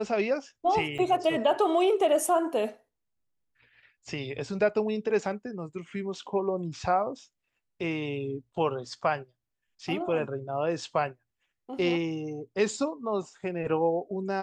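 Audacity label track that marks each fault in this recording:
0.980000	0.990000	drop-out 6.6 ms

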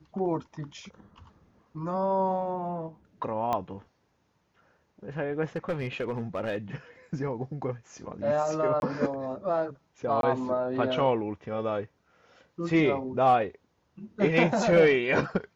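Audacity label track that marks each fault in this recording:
3.530000	3.530000	click −16 dBFS
5.560000	6.570000	clipping −24.5 dBFS
8.800000	8.820000	drop-out 21 ms
10.210000	10.230000	drop-out 22 ms

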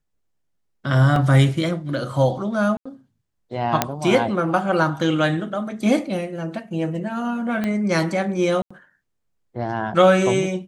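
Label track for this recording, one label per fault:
1.160000	1.160000	drop-out 2.1 ms
2.770000	2.850000	drop-out 85 ms
3.820000	3.820000	click −1 dBFS
7.640000	7.640000	click −12 dBFS
8.620000	8.710000	drop-out 85 ms

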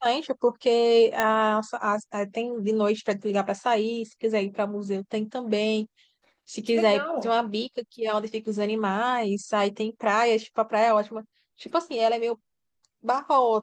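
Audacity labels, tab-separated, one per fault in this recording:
1.200000	1.200000	click −8 dBFS

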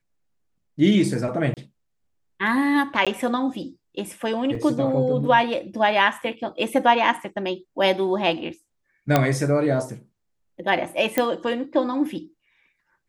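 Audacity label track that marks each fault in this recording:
1.540000	1.570000	drop-out 28 ms
3.050000	3.070000	drop-out 16 ms
4.550000	4.550000	drop-out 2.5 ms
6.220000	6.220000	drop-out 3.9 ms
9.160000	9.160000	click −4 dBFS
11.180000	11.180000	click −6 dBFS

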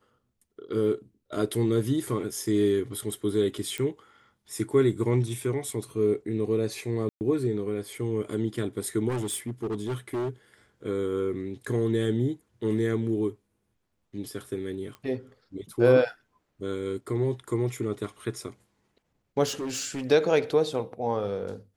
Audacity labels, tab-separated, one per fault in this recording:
3.780000	3.780000	click −17 dBFS
7.090000	7.210000	drop-out 119 ms
9.080000	10.300000	clipping −26.5 dBFS
14.950000	14.950000	click −28 dBFS
19.460000	20.050000	clipping −28.5 dBFS

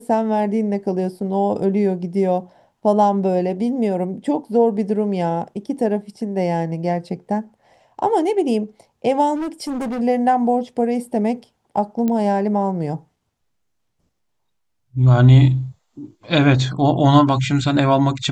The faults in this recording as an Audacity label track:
9.350000	10.010000	clipping −21.5 dBFS
12.080000	12.080000	click −11 dBFS

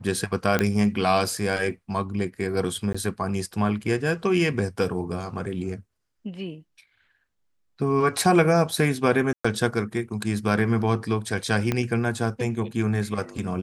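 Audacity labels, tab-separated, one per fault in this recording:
0.590000	0.590000	click −8 dBFS
2.930000	2.940000	drop-out 15 ms
9.330000	9.450000	drop-out 115 ms
11.720000	11.720000	click −10 dBFS

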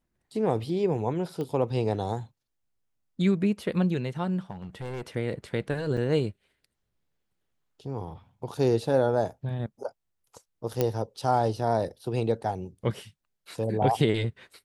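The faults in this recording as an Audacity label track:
1.410000	1.410000	click −23 dBFS
4.510000	5.070000	clipping −32 dBFS
5.970000	5.970000	drop-out 4.5 ms
10.810000	10.810000	click −11 dBFS

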